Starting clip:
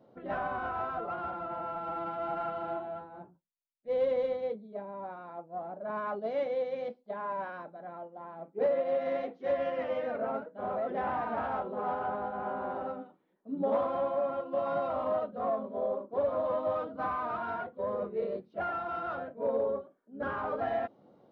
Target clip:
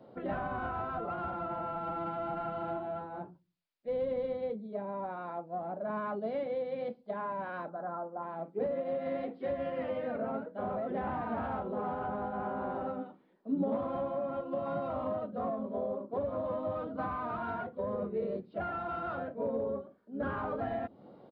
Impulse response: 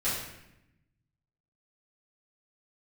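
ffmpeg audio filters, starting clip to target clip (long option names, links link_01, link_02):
-filter_complex "[0:a]asettb=1/sr,asplit=3[link_01][link_02][link_03];[link_01]atrim=end=7.694[link_04];[link_02]atrim=start=7.69:end=8.23,asetpts=PTS-STARTPTS,afade=type=in:duration=0.004:curve=qsin,afade=type=out:start_time=0.536:duration=0.004:curve=qsin,highshelf=frequency=1800:width_type=q:width=3:gain=-10[link_05];[link_03]atrim=start=8.226[link_06];[link_04][link_05]acrossfade=duration=0.004:curve1=hsin:curve2=qsin[link_07];[link_07][link_06]acrossfade=duration=0.004:curve1=qsin:curve2=hsin,acrossover=split=280[link_08][link_09];[link_08]aecho=1:1:90|180|270:0.112|0.0415|0.0154[link_10];[link_09]acompressor=threshold=-41dB:ratio=6[link_11];[link_10][link_11]amix=inputs=2:normalize=0,aresample=11025,aresample=44100,volume=6dB"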